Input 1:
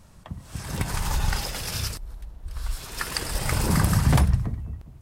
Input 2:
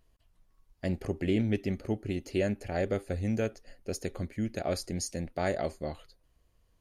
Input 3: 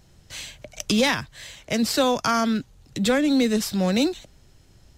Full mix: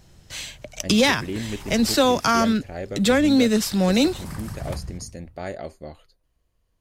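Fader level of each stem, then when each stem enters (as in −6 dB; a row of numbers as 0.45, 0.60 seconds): −13.5, −2.0, +2.5 decibels; 0.55, 0.00, 0.00 seconds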